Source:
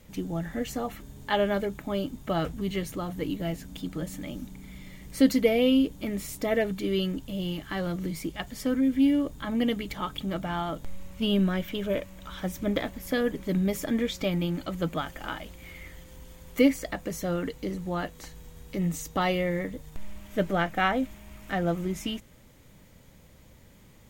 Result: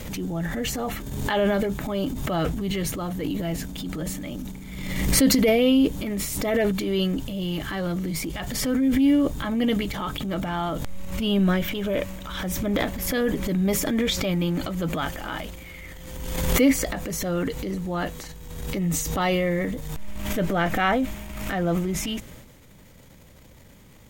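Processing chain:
transient designer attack −6 dB, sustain +8 dB
background raised ahead of every attack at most 40 dB per second
level +3.5 dB

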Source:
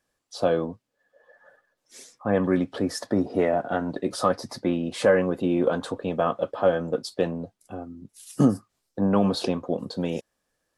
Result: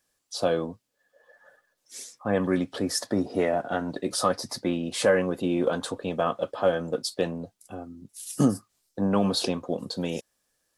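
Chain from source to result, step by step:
high-shelf EQ 3,300 Hz +10.5 dB
level −2.5 dB

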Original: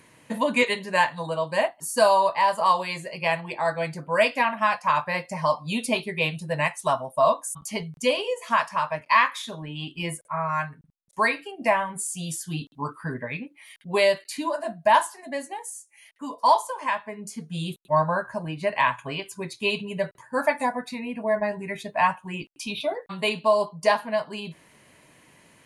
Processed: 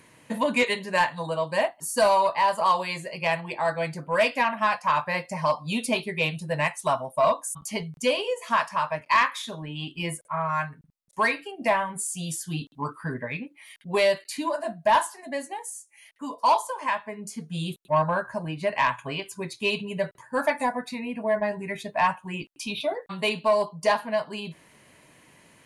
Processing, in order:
soft clipping −12 dBFS, distortion −19 dB

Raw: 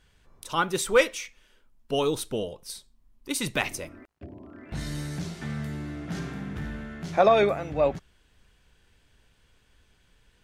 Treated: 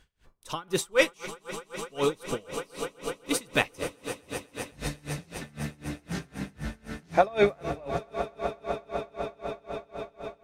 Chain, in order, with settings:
echo that builds up and dies away 125 ms, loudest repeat 8, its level −16 dB
tremolo with a sine in dB 3.9 Hz, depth 28 dB
level +3 dB

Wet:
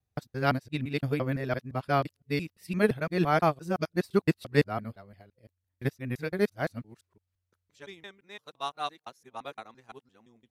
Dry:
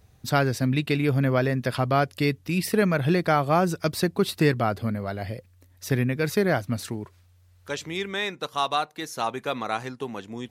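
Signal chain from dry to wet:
reversed piece by piece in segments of 171 ms
expander for the loud parts 2.5 to 1, over −34 dBFS

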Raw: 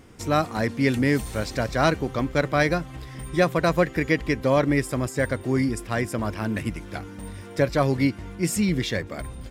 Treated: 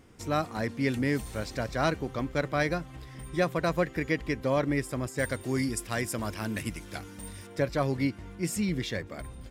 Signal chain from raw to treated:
0:05.18–0:07.47: high-shelf EQ 3,200 Hz +11 dB
level −6.5 dB

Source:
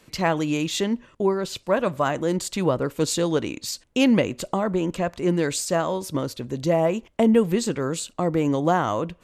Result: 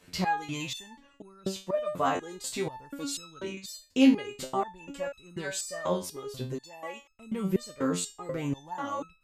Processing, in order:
0:06.52–0:07.10: bass and treble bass −14 dB, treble 0 dB
in parallel at +1 dB: brickwall limiter −14 dBFS, peak gain reduction 7.5 dB
on the sum: step-sequenced resonator 4.1 Hz 89–1,300 Hz

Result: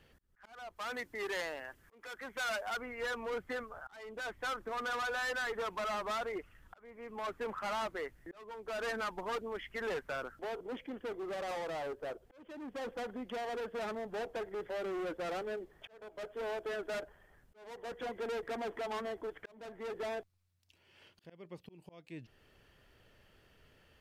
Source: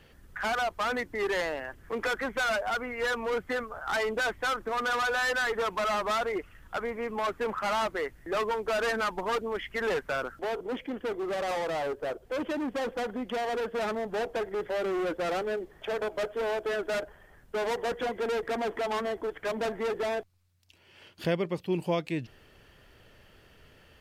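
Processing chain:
volume swells 584 ms
0:00.76–0:02.77: spectral tilt +1.5 dB per octave
level −8 dB

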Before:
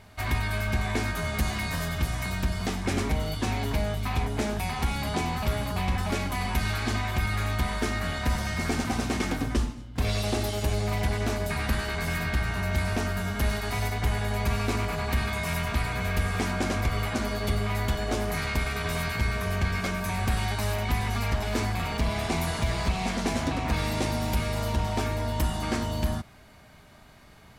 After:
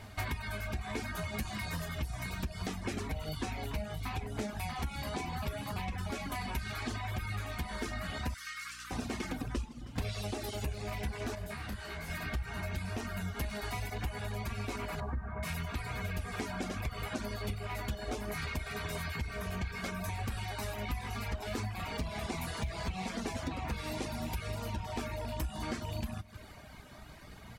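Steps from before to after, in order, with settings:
loose part that buzzes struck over −25 dBFS, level −30 dBFS
0:15.00–0:15.43: low-pass filter 1,500 Hz 24 dB per octave
flanger 0.69 Hz, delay 8.5 ms, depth 8 ms, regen +62%
repeating echo 157 ms, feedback 41%, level −16 dB
downward compressor 4 to 1, threshold −41 dBFS, peak gain reduction 14.5 dB
0:08.34–0:08.91: Butterworth high-pass 1,100 Hz 96 dB per octave
mains hum 60 Hz, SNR 20 dB
reverb reduction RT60 0.85 s
0:11.35–0:12.10: micro pitch shift up and down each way 45 cents
level +7 dB

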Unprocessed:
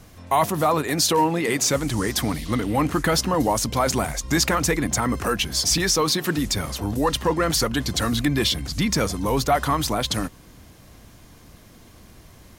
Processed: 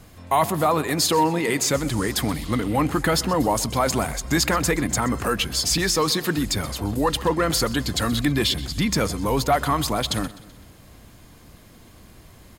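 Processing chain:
notch filter 5,800 Hz, Q 8.7
repeating echo 127 ms, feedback 47%, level −18.5 dB

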